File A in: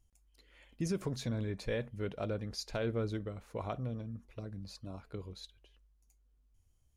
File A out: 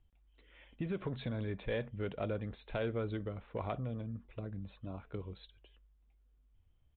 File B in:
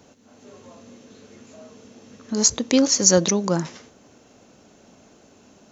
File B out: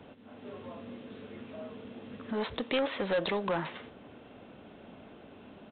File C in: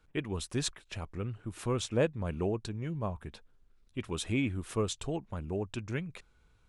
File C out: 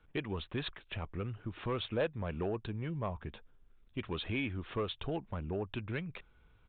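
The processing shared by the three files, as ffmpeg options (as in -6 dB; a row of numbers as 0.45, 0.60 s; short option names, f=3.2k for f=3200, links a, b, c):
-filter_complex "[0:a]acrossover=split=480|3000[a][b][c];[a]acompressor=threshold=-36dB:ratio=6[d];[d][b][c]amix=inputs=3:normalize=0,aresample=8000,asoftclip=type=tanh:threshold=-26.5dB,aresample=44100,volume=1.5dB"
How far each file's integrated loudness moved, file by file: -1.0, -17.0, -3.5 LU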